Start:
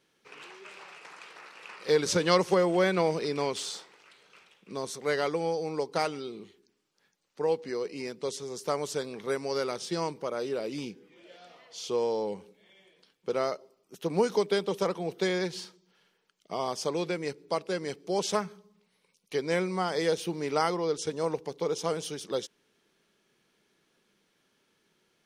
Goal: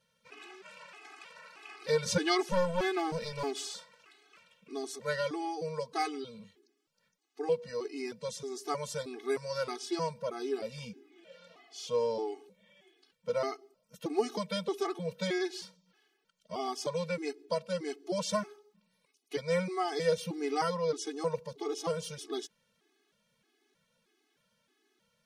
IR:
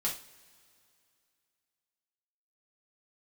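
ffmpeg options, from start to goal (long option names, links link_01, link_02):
-filter_complex "[0:a]asettb=1/sr,asplit=3[link_01][link_02][link_03];[link_01]atrim=end=2.404[link_04];[link_02]atrim=start=2.4:end=3.57,asetpts=PTS-STARTPTS,afade=type=in:duration=0.004:curve=qsin,afade=type=out:start_time=1.166:duration=0.004:curve=qsin,aeval=exprs='clip(val(0),-1,0.0299)':channel_layout=same[link_05];[link_03]atrim=start=3.566[link_06];[link_04][link_05]acrossfade=duration=0.004:curve1=hsin:curve2=qsin[link_07];[link_07][link_06]acrossfade=duration=0.004:curve1=qsin:curve2=hsin,afftfilt=real='re*gt(sin(2*PI*1.6*pts/sr)*(1-2*mod(floor(b*sr/1024/220),2)),0)':imag='im*gt(sin(2*PI*1.6*pts/sr)*(1-2*mod(floor(b*sr/1024/220),2)),0)':win_size=1024:overlap=0.75"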